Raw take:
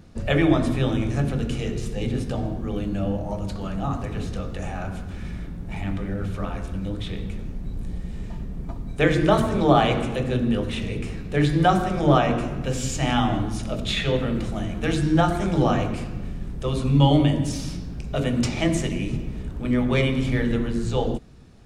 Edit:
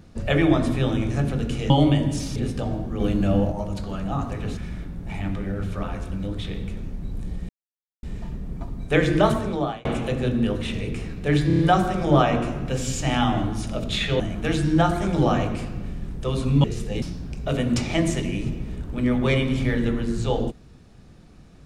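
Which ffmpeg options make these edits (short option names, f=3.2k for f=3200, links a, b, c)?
-filter_complex "[0:a]asplit=15[a][b][c][d][e][f][g][h][i][j][k][l][m][n][o];[a]atrim=end=1.702[p];[b]atrim=start=17.028:end=17.692[q];[c]atrim=start=2.078:end=2.722[r];[d]atrim=start=2.718:end=3.242,asetpts=PTS-STARTPTS,volume=5dB[s];[e]atrim=start=3.238:end=4.292[t];[f]atrim=start=5.188:end=8.11,asetpts=PTS-STARTPTS,afade=t=out:st=2.918:d=0.004:c=hsin,apad=pad_dur=0.54[u];[g]atrim=start=8.11:end=9.93,asetpts=PTS-STARTPTS,afade=t=in:d=0.004:c=hsin,afade=t=out:st=1.24:d=0.58[v];[h]atrim=start=9.93:end=11.582,asetpts=PTS-STARTPTS,afade=t=in:d=0.004:c=hsin[w];[i]atrim=start=11.548:end=11.582[x];[j]atrim=start=11.548:end=11.582[y];[k]atrim=start=11.548:end=11.582[z];[l]atrim=start=11.548:end=14.162[aa];[m]atrim=start=14.588:end=17.032[ab];[n]atrim=start=1.698:end=2.082[ac];[o]atrim=start=17.688[ad];[p][q]acrossfade=d=0.004:c1=hsin:c2=hsin[ae];[ae][r]acrossfade=d=0.004:c1=hsin:c2=hsin[af];[af][s]acrossfade=d=0.004:c1=hsin:c2=hsin[ag];[ag][t]acrossfade=d=0.004:c1=hsin:c2=hsin[ah];[u][v][w]concat=n=3:v=0:a=1[ai];[ah][ai]acrossfade=d=0.004:c1=hsin:c2=hsin[aj];[aj][x]acrossfade=d=0.004:c1=hsin:c2=hsin[ak];[ak][y]acrossfade=d=0.004:c1=hsin:c2=hsin[al];[al][z]acrossfade=d=0.004:c1=hsin:c2=hsin[am];[am][aa]acrossfade=d=0.004:c1=hsin:c2=hsin[an];[an][ab]acrossfade=d=0.004:c1=hsin:c2=hsin[ao];[ao][ac]acrossfade=d=0.004:c1=hsin:c2=hsin[ap];[ap][ad]acrossfade=d=0.004:c1=hsin:c2=hsin"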